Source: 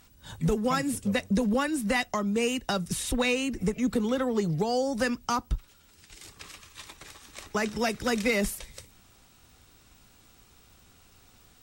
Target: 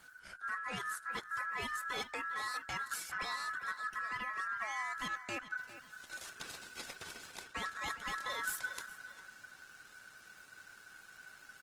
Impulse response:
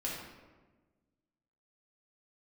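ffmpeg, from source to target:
-filter_complex "[0:a]lowshelf=frequency=84:gain=7.5,areverse,acompressor=threshold=-36dB:ratio=8,areverse,afreqshift=-35,aresample=32000,aresample=44100,asplit=2[link_01][link_02];[link_02]adelay=405,lowpass=frequency=4600:poles=1,volume=-13dB,asplit=2[link_03][link_04];[link_04]adelay=405,lowpass=frequency=4600:poles=1,volume=0.37,asplit=2[link_05][link_06];[link_06]adelay=405,lowpass=frequency=4600:poles=1,volume=0.37,asplit=2[link_07][link_08];[link_08]adelay=405,lowpass=frequency=4600:poles=1,volume=0.37[link_09];[link_03][link_05][link_07][link_09]amix=inputs=4:normalize=0[link_10];[link_01][link_10]amix=inputs=2:normalize=0,aeval=exprs='val(0)*sin(2*PI*1500*n/s)':channel_layout=same,volume=1.5dB" -ar 48000 -c:a libopus -b:a 20k

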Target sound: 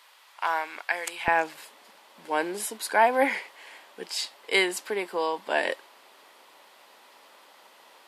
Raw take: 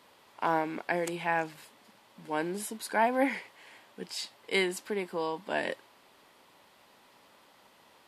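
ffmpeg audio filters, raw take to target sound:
ffmpeg -i in.wav -af "asetnsamples=nb_out_samples=441:pad=0,asendcmd='1.28 highpass f 410',highpass=1100,volume=6.5dB" out.wav

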